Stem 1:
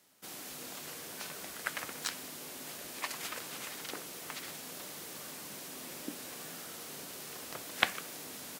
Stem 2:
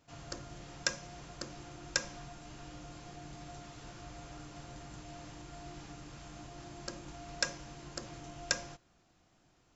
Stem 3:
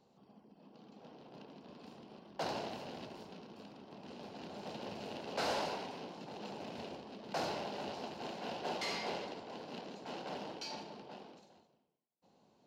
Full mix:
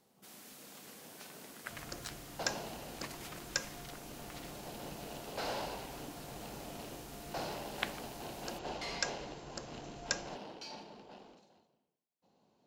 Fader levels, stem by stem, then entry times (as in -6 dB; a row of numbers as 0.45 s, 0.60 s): -9.0 dB, -3.0 dB, -3.0 dB; 0.00 s, 1.60 s, 0.00 s